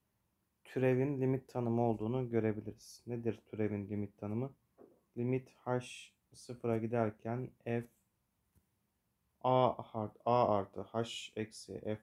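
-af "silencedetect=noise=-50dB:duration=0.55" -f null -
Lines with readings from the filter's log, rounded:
silence_start: 0.00
silence_end: 0.65 | silence_duration: 0.65
silence_start: 7.86
silence_end: 9.44 | silence_duration: 1.59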